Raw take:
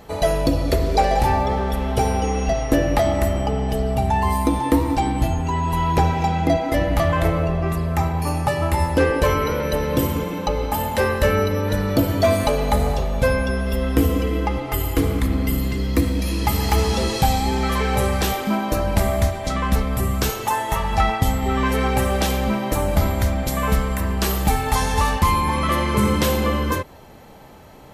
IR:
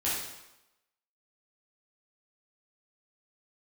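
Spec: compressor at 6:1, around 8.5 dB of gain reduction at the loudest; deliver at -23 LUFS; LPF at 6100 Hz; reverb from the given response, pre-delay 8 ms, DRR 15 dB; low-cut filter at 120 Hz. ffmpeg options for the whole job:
-filter_complex "[0:a]highpass=120,lowpass=6.1k,acompressor=threshold=-23dB:ratio=6,asplit=2[a][b];[1:a]atrim=start_sample=2205,adelay=8[c];[b][c]afir=irnorm=-1:irlink=0,volume=-23dB[d];[a][d]amix=inputs=2:normalize=0,volume=4.5dB"

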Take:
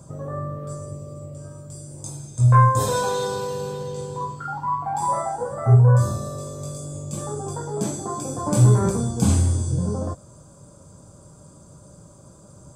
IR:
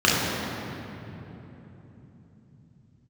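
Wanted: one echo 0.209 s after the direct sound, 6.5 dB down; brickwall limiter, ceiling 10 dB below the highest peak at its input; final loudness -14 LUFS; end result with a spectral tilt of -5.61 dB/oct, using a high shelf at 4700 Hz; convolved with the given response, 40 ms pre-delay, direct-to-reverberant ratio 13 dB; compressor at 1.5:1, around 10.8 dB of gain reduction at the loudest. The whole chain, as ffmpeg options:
-filter_complex "[0:a]highshelf=f=4.7k:g=3,acompressor=threshold=-41dB:ratio=1.5,alimiter=level_in=1dB:limit=-24dB:level=0:latency=1,volume=-1dB,aecho=1:1:209:0.473,asplit=2[a][b];[1:a]atrim=start_sample=2205,adelay=40[c];[b][c]afir=irnorm=-1:irlink=0,volume=-34.5dB[d];[a][d]amix=inputs=2:normalize=0,volume=20dB"

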